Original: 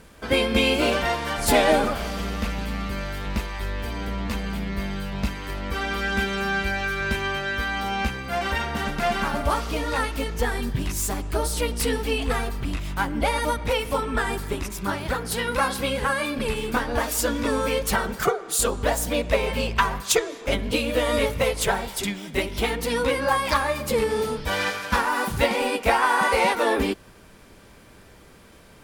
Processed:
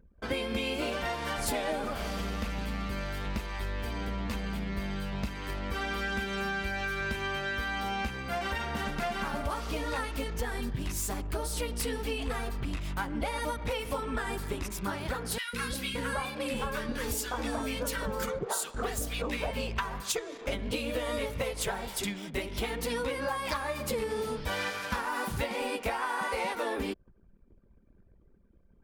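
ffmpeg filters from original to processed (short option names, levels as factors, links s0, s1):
-filter_complex "[0:a]asettb=1/sr,asplit=3[s0][s1][s2];[s0]atrim=end=15.384[s3];[s1]atrim=start=15.38:end=19.51,asetpts=PTS-STARTPTS,afade=t=in:d=0.004:c=qsin,afade=t=out:st=4.126:d=0.004:c=qsin,acrossover=split=410|1400[s4][s5][s6];[s4]adelay=150[s7];[s5]adelay=570[s8];[s7][s8][s6]amix=inputs=3:normalize=0,atrim=end_sample=182133[s9];[s2]atrim=start=19.506[s10];[s3][s9]acrossfade=d=0.004:c1=hsin:c2=qsin[s11];[s11][s10]acrossfade=d=0.004:c1=qsin:c2=hsin,anlmdn=0.158,acompressor=threshold=0.0562:ratio=6,volume=0.631"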